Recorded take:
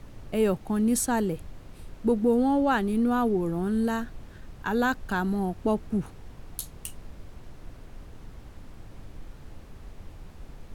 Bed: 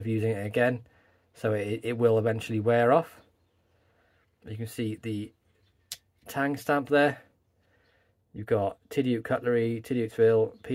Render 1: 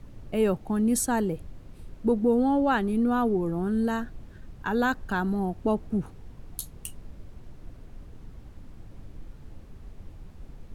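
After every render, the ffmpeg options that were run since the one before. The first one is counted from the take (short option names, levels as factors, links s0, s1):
-af "afftdn=nr=6:nf=-47"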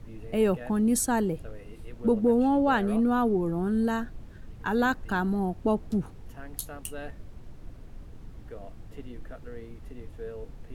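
-filter_complex "[1:a]volume=0.126[s0];[0:a][s0]amix=inputs=2:normalize=0"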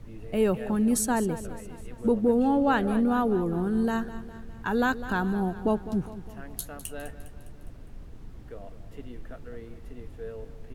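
-af "aecho=1:1:204|408|612|816|1020:0.2|0.108|0.0582|0.0314|0.017"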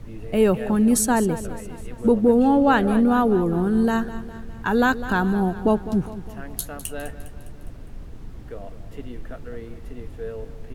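-af "volume=2"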